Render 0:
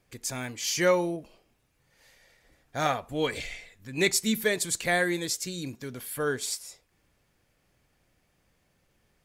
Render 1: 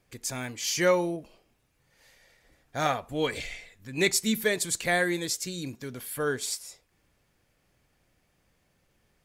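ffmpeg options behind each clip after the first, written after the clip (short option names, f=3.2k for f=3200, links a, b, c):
-af anull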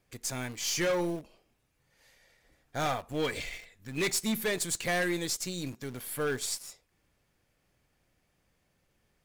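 -filter_complex "[0:a]asplit=2[a][b];[b]acrusher=bits=4:dc=4:mix=0:aa=0.000001,volume=-5.5dB[c];[a][c]amix=inputs=2:normalize=0,asoftclip=type=hard:threshold=-21.5dB,volume=-3.5dB"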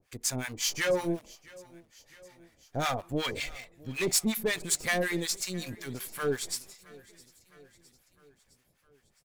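-filter_complex "[0:a]acrossover=split=800[a][b];[a]aeval=exprs='val(0)*(1-1/2+1/2*cos(2*PI*5.4*n/s))':c=same[c];[b]aeval=exprs='val(0)*(1-1/2-1/2*cos(2*PI*5.4*n/s))':c=same[d];[c][d]amix=inputs=2:normalize=0,aecho=1:1:661|1322|1983|2644:0.075|0.045|0.027|0.0162,volume=5.5dB"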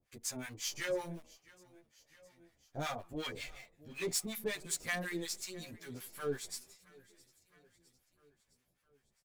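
-filter_complex "[0:a]asplit=2[a][b];[b]adelay=11.2,afreqshift=1.1[c];[a][c]amix=inputs=2:normalize=1,volume=-6dB"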